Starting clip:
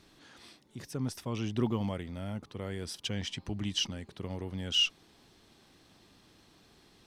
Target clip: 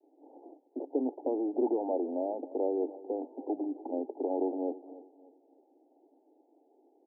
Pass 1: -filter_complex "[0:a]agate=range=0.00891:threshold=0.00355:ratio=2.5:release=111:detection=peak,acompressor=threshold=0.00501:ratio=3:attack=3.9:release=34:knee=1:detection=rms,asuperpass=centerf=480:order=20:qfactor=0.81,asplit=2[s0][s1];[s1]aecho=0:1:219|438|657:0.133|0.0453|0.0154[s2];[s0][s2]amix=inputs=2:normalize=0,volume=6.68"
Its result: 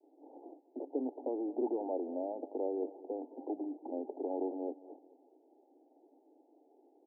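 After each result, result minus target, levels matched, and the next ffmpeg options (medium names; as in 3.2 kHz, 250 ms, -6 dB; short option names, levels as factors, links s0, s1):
echo 78 ms early; compression: peak gain reduction +5 dB
-filter_complex "[0:a]agate=range=0.00891:threshold=0.00355:ratio=2.5:release=111:detection=peak,acompressor=threshold=0.00501:ratio=3:attack=3.9:release=34:knee=1:detection=rms,asuperpass=centerf=480:order=20:qfactor=0.81,asplit=2[s0][s1];[s1]aecho=0:1:297|594|891:0.133|0.0453|0.0154[s2];[s0][s2]amix=inputs=2:normalize=0,volume=6.68"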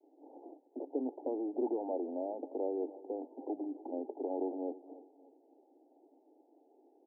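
compression: peak gain reduction +5 dB
-filter_complex "[0:a]agate=range=0.00891:threshold=0.00355:ratio=2.5:release=111:detection=peak,acompressor=threshold=0.0119:ratio=3:attack=3.9:release=34:knee=1:detection=rms,asuperpass=centerf=480:order=20:qfactor=0.81,asplit=2[s0][s1];[s1]aecho=0:1:297|594|891:0.133|0.0453|0.0154[s2];[s0][s2]amix=inputs=2:normalize=0,volume=6.68"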